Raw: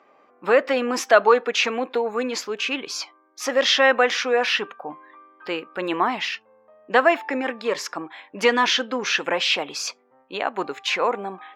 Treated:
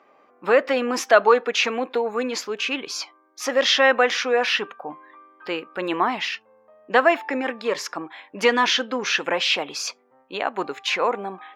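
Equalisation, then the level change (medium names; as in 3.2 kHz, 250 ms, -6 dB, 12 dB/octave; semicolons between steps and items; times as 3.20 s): band-stop 7.7 kHz, Q 24; 0.0 dB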